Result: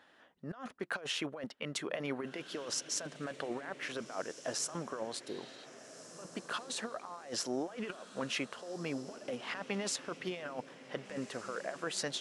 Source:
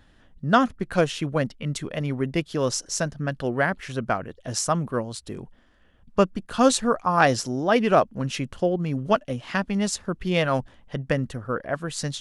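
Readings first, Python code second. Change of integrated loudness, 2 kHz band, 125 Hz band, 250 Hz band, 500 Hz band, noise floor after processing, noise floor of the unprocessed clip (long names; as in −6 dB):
−14.5 dB, −13.0 dB, −21.5 dB, −16.0 dB, −16.0 dB, −60 dBFS, −57 dBFS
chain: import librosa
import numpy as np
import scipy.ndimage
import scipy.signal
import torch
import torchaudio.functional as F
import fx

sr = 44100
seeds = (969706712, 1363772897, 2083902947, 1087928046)

p1 = scipy.signal.sosfilt(scipy.signal.butter(2, 480.0, 'highpass', fs=sr, output='sos'), x)
p2 = fx.spec_repair(p1, sr, seeds[0], start_s=5.3, length_s=0.33, low_hz=1100.0, high_hz=5000.0, source='before')
p3 = fx.high_shelf(p2, sr, hz=3800.0, db=-9.0)
p4 = fx.over_compress(p3, sr, threshold_db=-35.0, ratio=-1.0)
p5 = p4 + fx.echo_diffused(p4, sr, ms=1586, feedback_pct=41, wet_db=-13.5, dry=0)
y = p5 * librosa.db_to_amplitude(-5.5)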